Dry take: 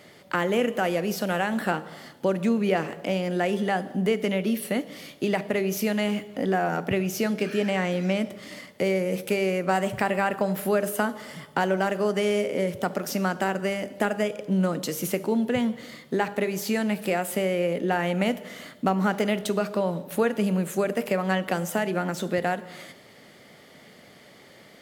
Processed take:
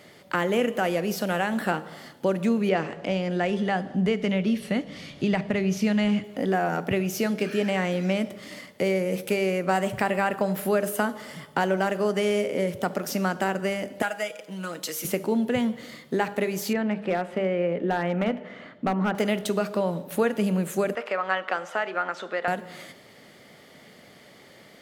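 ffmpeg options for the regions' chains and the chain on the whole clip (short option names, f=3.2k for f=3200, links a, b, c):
-filter_complex "[0:a]asettb=1/sr,asplit=3[a][b][c];[a]atrim=end=2.694[d];[b]atrim=start=2.69:end=6.24,asetpts=PTS-STARTPTS,afade=t=in:d=0.004:c=qsin,afade=t=out:st=3.546:d=0.004:c=qsin,lowpass=6.2k,asubboost=boost=5.5:cutoff=170,acompressor=mode=upward:threshold=-35dB:ratio=2.5:attack=3.2:release=140:knee=2.83:detection=peak[e];[c]atrim=start=6.236[f];[d][e]acrossfade=d=0.004:c1=hsin:c2=qsin[g];[g][f]acrossfade=d=0.004:c1=qsin:c2=hsin,asettb=1/sr,asplit=3[h][i][j];[h]atrim=end=14.024[k];[i]atrim=start=14.02:end=15.05,asetpts=PTS-STARTPTS,afade=t=in:d=0.004:c=qsin,afade=t=out:st=1.026:d=0.004:c=qsin,highpass=f=1.2k:p=1,aecho=1:1:6.2:0.7,atrim=end_sample=45423[l];[j]atrim=start=15.046[m];[k][l]acrossfade=d=0.004:c1=hsin:c2=qsin[n];[n][m]acrossfade=d=0.004:c1=qsin:c2=hsin,asettb=1/sr,asplit=3[o][p][q];[o]atrim=end=16.734[r];[p]atrim=start=16.73:end=19.15,asetpts=PTS-STARTPTS,afade=t=in:d=0.004:c=qsin,afade=t=out:st=2.416:d=0.004:c=qsin,lowpass=2.2k,bandreject=f=50:t=h:w=6,bandreject=f=100:t=h:w=6,bandreject=f=150:t=h:w=6,bandreject=f=200:t=h:w=6,bandreject=f=250:t=h:w=6,bandreject=f=300:t=h:w=6,volume=17dB,asoftclip=hard,volume=-17dB[s];[q]atrim=start=19.146[t];[r][s]acrossfade=d=0.004:c1=hsin:c2=qsin[u];[u][t]acrossfade=d=0.004:c1=qsin:c2=hsin,asettb=1/sr,asplit=3[v][w][x];[v]atrim=end=20.954[y];[w]atrim=start=20.95:end=22.48,asetpts=PTS-STARTPTS,afade=t=in:d=0.004:c=qsin,afade=t=out:st=1.526:d=0.004:c=qsin,highpass=550,lowpass=3.6k,equalizer=f=1.3k:t=o:w=0.51:g=7.5[z];[x]atrim=start=22.476[aa];[y][z]acrossfade=d=0.004:c1=hsin:c2=qsin[ab];[ab][aa]acrossfade=d=0.004:c1=qsin:c2=hsin"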